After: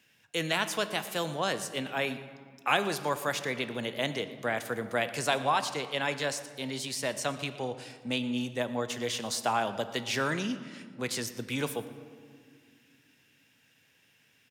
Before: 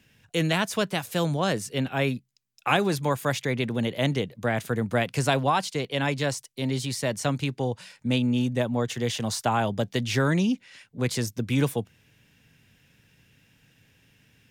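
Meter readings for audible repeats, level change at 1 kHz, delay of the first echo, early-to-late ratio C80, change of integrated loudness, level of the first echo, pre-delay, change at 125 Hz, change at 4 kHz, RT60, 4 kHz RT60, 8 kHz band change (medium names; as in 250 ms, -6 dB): 1, -3.0 dB, 118 ms, 13.0 dB, -5.0 dB, -20.0 dB, 8 ms, -13.5 dB, -2.0 dB, 2.0 s, 1.1 s, -2.0 dB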